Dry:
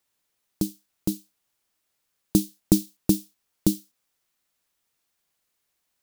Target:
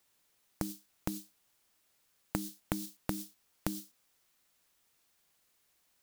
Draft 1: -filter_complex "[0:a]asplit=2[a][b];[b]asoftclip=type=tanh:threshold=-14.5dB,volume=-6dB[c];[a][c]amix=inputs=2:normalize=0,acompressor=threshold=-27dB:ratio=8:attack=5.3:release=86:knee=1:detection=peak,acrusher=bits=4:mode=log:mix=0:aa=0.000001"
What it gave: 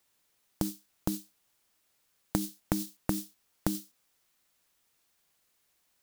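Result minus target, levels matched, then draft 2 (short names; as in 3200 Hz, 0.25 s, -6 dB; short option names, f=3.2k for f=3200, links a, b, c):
compressor: peak gain reduction -6 dB
-filter_complex "[0:a]asplit=2[a][b];[b]asoftclip=type=tanh:threshold=-14.5dB,volume=-6dB[c];[a][c]amix=inputs=2:normalize=0,acompressor=threshold=-34dB:ratio=8:attack=5.3:release=86:knee=1:detection=peak,acrusher=bits=4:mode=log:mix=0:aa=0.000001"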